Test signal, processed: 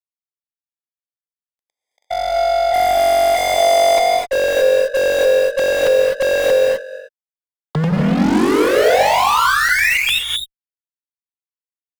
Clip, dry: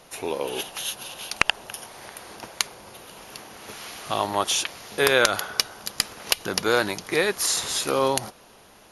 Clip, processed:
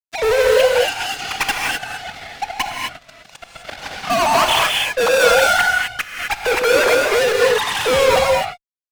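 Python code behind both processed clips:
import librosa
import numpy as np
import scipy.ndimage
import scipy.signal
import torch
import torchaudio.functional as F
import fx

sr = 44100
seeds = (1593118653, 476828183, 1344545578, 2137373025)

p1 = fx.sine_speech(x, sr)
p2 = fx.lowpass(p1, sr, hz=1800.0, slope=6)
p3 = fx.rider(p2, sr, range_db=3, speed_s=2.0)
p4 = p2 + (p3 * 10.0 ** (-2.0 / 20.0))
p5 = fx.fuzz(p4, sr, gain_db=35.0, gate_db=-39.0)
p6 = fx.rev_gated(p5, sr, seeds[0], gate_ms=280, shape='rising', drr_db=-0.5)
y = p6 * 10.0 ** (-2.0 / 20.0)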